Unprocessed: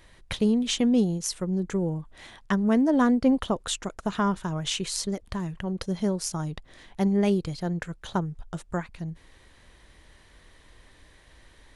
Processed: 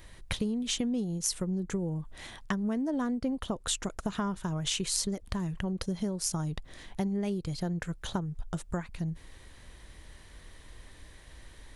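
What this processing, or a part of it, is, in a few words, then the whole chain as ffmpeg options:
ASMR close-microphone chain: -af "lowshelf=f=190:g=5.5,acompressor=threshold=-29dB:ratio=6,highshelf=f=7.1k:g=7.5"

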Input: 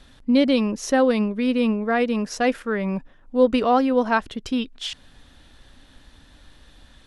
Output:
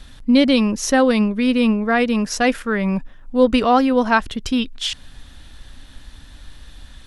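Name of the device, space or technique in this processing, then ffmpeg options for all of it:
smiley-face EQ: -af "lowshelf=f=82:g=6.5,equalizer=f=450:t=o:w=1.8:g=-4.5,highshelf=f=7.2k:g=4.5,volume=6dB"

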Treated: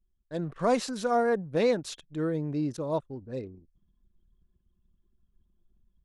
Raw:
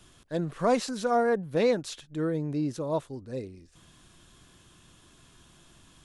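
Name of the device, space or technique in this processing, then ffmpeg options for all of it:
voice memo with heavy noise removal: -af "anlmdn=0.0398,dynaudnorm=f=240:g=3:m=8dB,volume=-8.5dB"

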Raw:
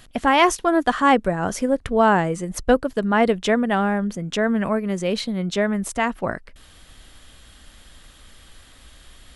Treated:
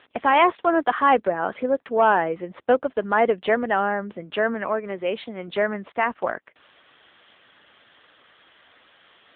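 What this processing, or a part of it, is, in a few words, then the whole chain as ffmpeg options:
telephone: -filter_complex "[0:a]asettb=1/sr,asplit=3[a][b][c];[a]atrim=end=4.544[d];[b]atrim=start=4.54:end=5.48,asetpts=PTS-STARTPTS,afade=t=in:d=0.004:c=qsin,afade=t=out:st=0.936:d=0.004:c=qsin,equalizer=f=73:w=0.35:g=-5.5[e];[c]atrim=start=5.476[f];[d][e]acrossfade=d=0.004:c1=hsin:c2=qsin[g];[g][f]acrossfade=d=0.004:c1=qsin:c2=hsin,highpass=380,lowpass=3.1k,asoftclip=type=tanh:threshold=-8.5dB,volume=2dB" -ar 8000 -c:a libopencore_amrnb -b:a 7950

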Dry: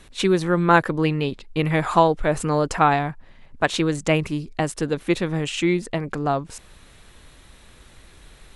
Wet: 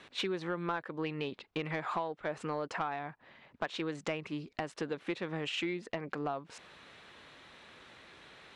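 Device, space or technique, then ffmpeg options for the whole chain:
AM radio: -af "highpass=120,lowpass=3.7k,lowshelf=f=270:g=-11,acompressor=threshold=-33dB:ratio=5,asoftclip=type=tanh:threshold=-22dB"

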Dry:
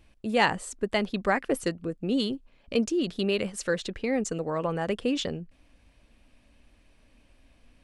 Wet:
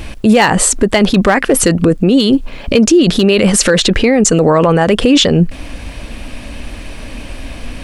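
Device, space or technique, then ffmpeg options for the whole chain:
loud club master: -af "acompressor=threshold=-31dB:ratio=2,asoftclip=type=hard:threshold=-22dB,alimiter=level_in=34dB:limit=-1dB:release=50:level=0:latency=1,volume=-1dB"

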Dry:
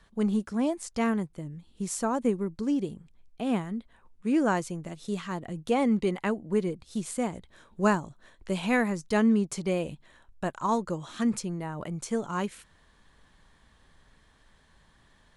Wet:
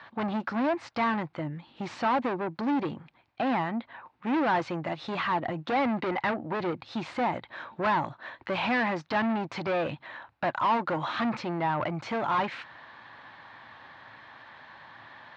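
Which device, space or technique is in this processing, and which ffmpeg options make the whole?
overdrive pedal into a guitar cabinet: -filter_complex "[0:a]asplit=2[a][b];[b]highpass=f=720:p=1,volume=33dB,asoftclip=type=tanh:threshold=-9.5dB[c];[a][c]amix=inputs=2:normalize=0,lowpass=f=2.7k:p=1,volume=-6dB,highpass=110,equalizer=f=110:t=q:w=4:g=9,equalizer=f=190:t=q:w=4:g=-8,equalizer=f=430:t=q:w=4:g=-10,equalizer=f=850:t=q:w=4:g=4,equalizer=f=3.2k:t=q:w=4:g=-5,lowpass=f=3.9k:w=0.5412,lowpass=f=3.9k:w=1.3066,volume=-8dB"

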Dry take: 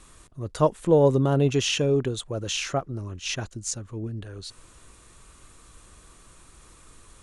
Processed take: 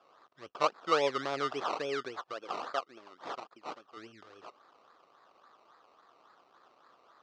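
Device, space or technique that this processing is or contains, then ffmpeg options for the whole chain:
circuit-bent sampling toy: -filter_complex "[0:a]asettb=1/sr,asplit=3[a][b][c];[a]atrim=end=2.334[d];[b]atrim=start=2.33:end=3.97,asetpts=PTS-STARTPTS,afade=t=in:d=0.004:c=qsin,afade=t=out:st=1.636:d=0.004:c=qsin,highpass=240[e];[c]atrim=start=3.966[f];[d][e]acrossfade=d=0.004:c1=hsin:c2=qsin[g];[g][f]acrossfade=d=0.004:c1=qsin:c2=hsin,acrusher=samples=21:mix=1:aa=0.000001:lfo=1:lforange=12.6:lforate=3.6,highpass=460,equalizer=f=760:t=q:w=4:g=3,equalizer=f=1.2k:t=q:w=4:g=9,equalizer=f=2.2k:t=q:w=4:g=-4,lowpass=f=5.3k:w=0.5412,lowpass=f=5.3k:w=1.3066,volume=-8.5dB"

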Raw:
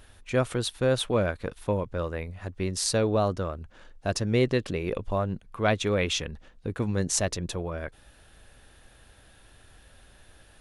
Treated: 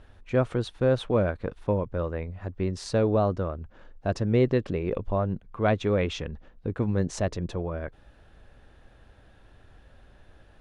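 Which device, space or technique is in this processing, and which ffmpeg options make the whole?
through cloth: -af "lowpass=6.8k,highshelf=f=2.1k:g=-13,volume=2dB"

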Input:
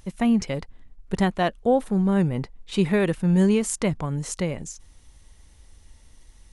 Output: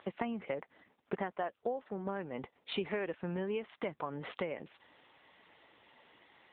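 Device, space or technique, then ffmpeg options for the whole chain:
voicemail: -filter_complex "[0:a]asettb=1/sr,asplit=3[a][b][c];[a]atrim=end=0.394[d];[b]atrim=start=0.39:end=1.8,asetpts=PTS-STARTPTS,afade=t=in:d=0.004:c=qsin,afade=t=out:st=1.406:d=0.004:c=qsin,acrossover=split=2700[e][f];[f]acompressor=threshold=-52dB:ratio=4:attack=1:release=60[g];[e][g]amix=inputs=2:normalize=0[h];[c]atrim=start=1.796[i];[d][h]acrossfade=d=0.004:c1=hsin:c2=qsin[j];[j][i]acrossfade=d=0.004:c1=qsin:c2=hsin,highpass=430,lowpass=3.2k,acompressor=threshold=-40dB:ratio=8,volume=7dB" -ar 8000 -c:a libopencore_amrnb -b:a 7950

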